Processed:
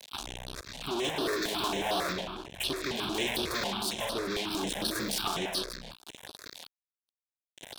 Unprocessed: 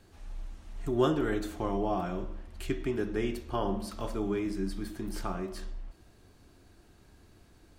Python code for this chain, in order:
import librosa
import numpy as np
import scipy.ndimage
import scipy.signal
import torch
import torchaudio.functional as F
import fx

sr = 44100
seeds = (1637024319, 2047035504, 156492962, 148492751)

p1 = x + 10.0 ** (-11.0 / 20.0) * np.pad(x, (int(156 * sr / 1000.0), 0))[:len(x)]
p2 = fx.chopper(p1, sr, hz=0.66, depth_pct=60, duty_pct=40)
p3 = fx.rider(p2, sr, range_db=5, speed_s=2.0)
p4 = p2 + (p3 * 10.0 ** (0.5 / 20.0))
p5 = fx.small_body(p4, sr, hz=(390.0, 670.0, 950.0, 1800.0), ring_ms=30, db=12, at=(1.21, 1.68))
p6 = fx.fuzz(p5, sr, gain_db=40.0, gate_db=-44.0)
p7 = fx.low_shelf(p6, sr, hz=350.0, db=-12.0)
p8 = 10.0 ** (-18.5 / 20.0) * np.tanh(p7 / 10.0 ** (-18.5 / 20.0))
p9 = fx.highpass(p8, sr, hz=150.0, slope=6)
p10 = fx.peak_eq(p9, sr, hz=3600.0, db=9.5, octaves=0.7)
p11 = fx.phaser_held(p10, sr, hz=11.0, low_hz=340.0, high_hz=7100.0)
y = p11 * 10.0 ** (-6.0 / 20.0)